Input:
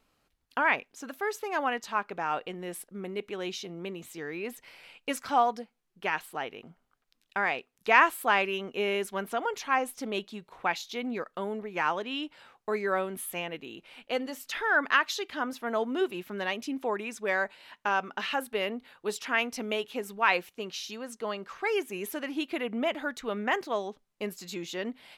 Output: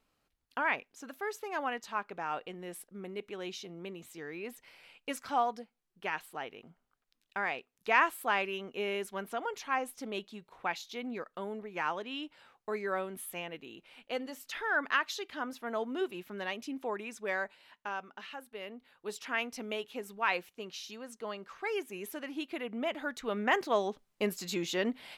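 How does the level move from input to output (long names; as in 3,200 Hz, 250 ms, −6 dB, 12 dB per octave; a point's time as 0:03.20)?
0:17.34 −5.5 dB
0:18.43 −15 dB
0:19.23 −6 dB
0:22.74 −6 dB
0:23.90 +3 dB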